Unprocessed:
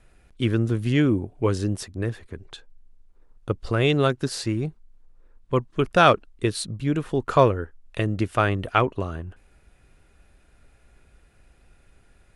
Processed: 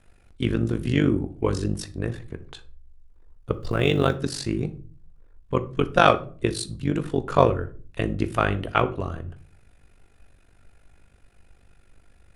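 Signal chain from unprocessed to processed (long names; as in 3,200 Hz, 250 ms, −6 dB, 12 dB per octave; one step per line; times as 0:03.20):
amplitude modulation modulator 49 Hz, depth 80%
0:03.53–0:04.16: log-companded quantiser 8 bits
on a send: convolution reverb RT60 0.40 s, pre-delay 4 ms, DRR 10 dB
on the sum: level +2.5 dB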